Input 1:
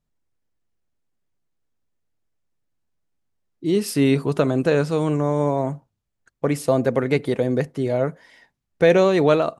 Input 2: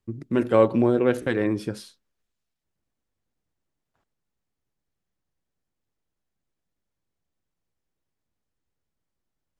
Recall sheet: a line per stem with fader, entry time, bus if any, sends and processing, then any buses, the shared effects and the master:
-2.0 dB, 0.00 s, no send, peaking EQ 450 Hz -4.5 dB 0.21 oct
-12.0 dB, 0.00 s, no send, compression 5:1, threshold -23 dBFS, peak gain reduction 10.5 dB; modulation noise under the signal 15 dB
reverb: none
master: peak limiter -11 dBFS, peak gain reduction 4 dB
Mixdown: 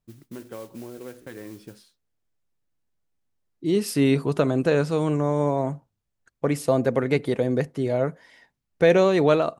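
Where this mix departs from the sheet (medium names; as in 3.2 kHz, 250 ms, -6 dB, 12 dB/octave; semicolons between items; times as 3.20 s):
stem 1: missing peaking EQ 450 Hz -4.5 dB 0.21 oct; master: missing peak limiter -11 dBFS, peak gain reduction 4 dB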